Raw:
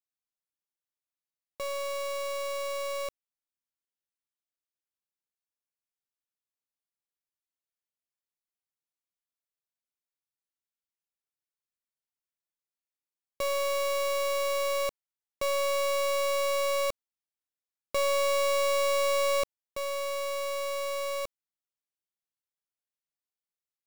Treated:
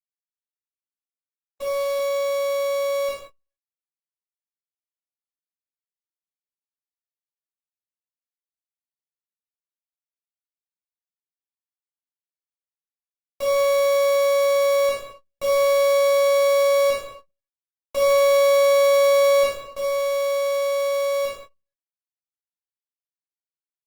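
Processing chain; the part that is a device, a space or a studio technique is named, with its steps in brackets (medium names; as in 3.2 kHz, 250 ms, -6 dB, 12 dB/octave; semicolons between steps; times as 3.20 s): speakerphone in a meeting room (reverberation RT60 0.90 s, pre-delay 14 ms, DRR -6 dB; speakerphone echo 130 ms, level -18 dB; level rider gain up to 5 dB; gate -33 dBFS, range -47 dB; trim -6 dB; Opus 20 kbps 48 kHz)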